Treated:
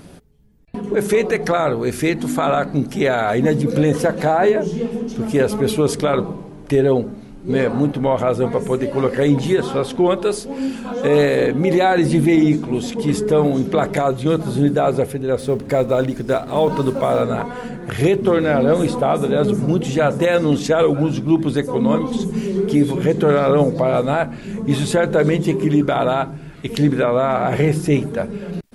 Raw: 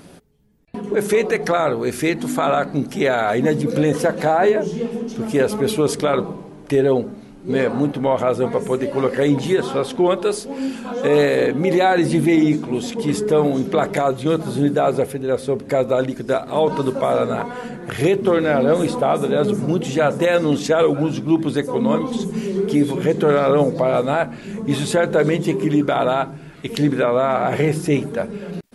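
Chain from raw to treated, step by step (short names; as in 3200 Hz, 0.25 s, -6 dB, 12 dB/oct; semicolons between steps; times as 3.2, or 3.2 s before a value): 15.39–17.22 G.711 law mismatch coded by mu; low shelf 110 Hz +10.5 dB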